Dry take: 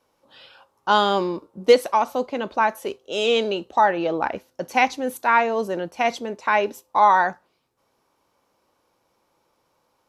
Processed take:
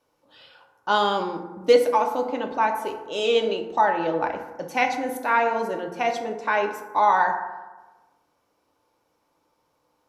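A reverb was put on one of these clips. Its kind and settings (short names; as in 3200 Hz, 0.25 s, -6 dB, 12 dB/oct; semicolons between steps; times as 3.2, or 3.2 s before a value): FDN reverb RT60 1.2 s, low-frequency decay 1.05×, high-frequency decay 0.4×, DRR 3.5 dB; gain -4 dB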